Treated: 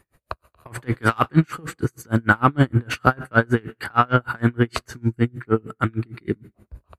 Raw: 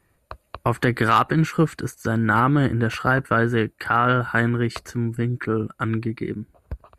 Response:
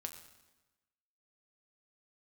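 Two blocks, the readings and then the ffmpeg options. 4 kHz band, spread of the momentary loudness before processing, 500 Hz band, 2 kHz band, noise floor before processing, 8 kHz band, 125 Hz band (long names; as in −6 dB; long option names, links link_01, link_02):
−1.0 dB, 11 LU, −1.0 dB, 0.0 dB, −66 dBFS, 0.0 dB, 0.0 dB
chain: -filter_complex "[0:a]acontrast=33,asplit=2[link_01][link_02];[1:a]atrim=start_sample=2205[link_03];[link_02][link_03]afir=irnorm=-1:irlink=0,volume=-7dB[link_04];[link_01][link_04]amix=inputs=2:normalize=0,aeval=exprs='val(0)*pow(10,-36*(0.5-0.5*cos(2*PI*6.5*n/s))/20)':channel_layout=same"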